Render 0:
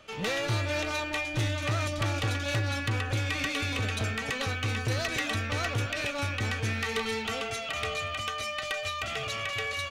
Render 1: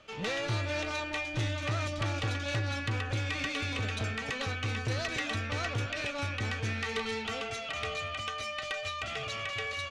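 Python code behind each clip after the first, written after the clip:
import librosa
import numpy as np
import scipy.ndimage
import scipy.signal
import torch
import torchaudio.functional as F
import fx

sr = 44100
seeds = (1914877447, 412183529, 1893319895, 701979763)

y = scipy.signal.sosfilt(scipy.signal.butter(2, 7300.0, 'lowpass', fs=sr, output='sos'), x)
y = y * 10.0 ** (-3.0 / 20.0)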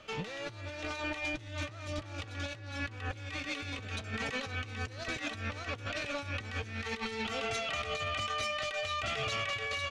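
y = fx.over_compress(x, sr, threshold_db=-37.0, ratio=-0.5)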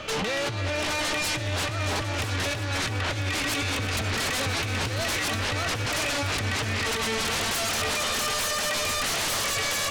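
y = fx.fold_sine(x, sr, drive_db=15, ceiling_db=-23.0)
y = fx.echo_heads(y, sr, ms=332, heads='all three', feedback_pct=41, wet_db=-15.5)
y = y * 10.0 ** (-1.5 / 20.0)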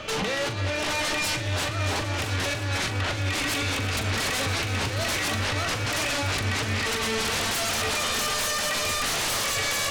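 y = fx.doubler(x, sr, ms=41.0, db=-8.5)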